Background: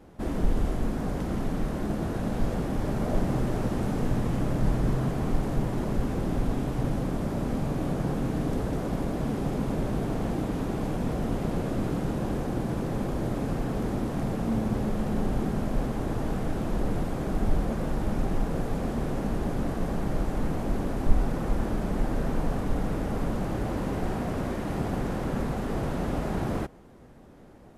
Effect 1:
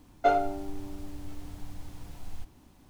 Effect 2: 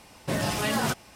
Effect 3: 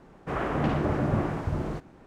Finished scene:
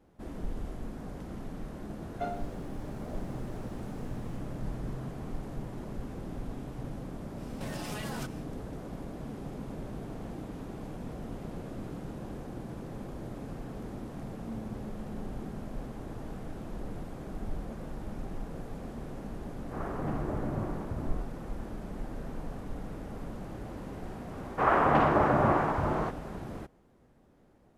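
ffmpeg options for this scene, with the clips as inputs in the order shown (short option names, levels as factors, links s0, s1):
-filter_complex "[3:a]asplit=2[s0][s1];[0:a]volume=0.266[s2];[2:a]acompressor=threshold=0.0316:ratio=6:attack=3.2:release=140:knee=1:detection=peak[s3];[s0]lowpass=1500[s4];[s1]equalizer=f=1000:w=0.56:g=14[s5];[1:a]atrim=end=2.89,asetpts=PTS-STARTPTS,volume=0.237,afade=t=in:d=0.004:c=hsin,afade=t=out:st=2.886:d=0.004:c=hsin,adelay=1960[s6];[s3]atrim=end=1.15,asetpts=PTS-STARTPTS,volume=0.501,afade=t=in:d=0.1,afade=t=out:st=1.05:d=0.1,adelay=7330[s7];[s4]atrim=end=2.06,asetpts=PTS-STARTPTS,volume=0.398,afade=t=in:d=0.004:c=hsin,afade=t=out:st=2.056:d=0.004:c=hsin,adelay=19440[s8];[s5]atrim=end=2.06,asetpts=PTS-STARTPTS,volume=0.596,afade=t=in:d=0.004:c=hsin,afade=t=out:st=2.056:d=0.004:c=hsin,adelay=24310[s9];[s2][s6][s7][s8][s9]amix=inputs=5:normalize=0"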